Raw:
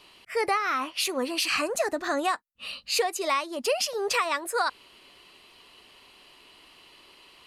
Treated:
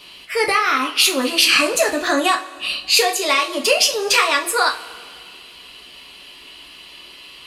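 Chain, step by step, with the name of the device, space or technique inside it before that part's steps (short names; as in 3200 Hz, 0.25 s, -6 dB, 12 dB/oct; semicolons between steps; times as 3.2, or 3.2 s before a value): bell 770 Hz -3 dB 1.6 oct; presence and air boost (bell 3300 Hz +5 dB 0.96 oct; high shelf 11000 Hz +4.5 dB); two-slope reverb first 0.26 s, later 2.1 s, from -21 dB, DRR 0.5 dB; gain +7.5 dB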